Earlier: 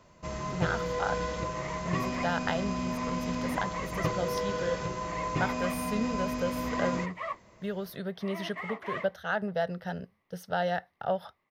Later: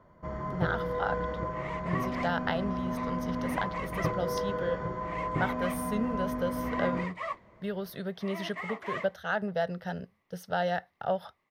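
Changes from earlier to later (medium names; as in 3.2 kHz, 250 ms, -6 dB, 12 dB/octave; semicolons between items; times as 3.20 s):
first sound: add Savitzky-Golay filter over 41 samples; second sound: remove distance through air 57 m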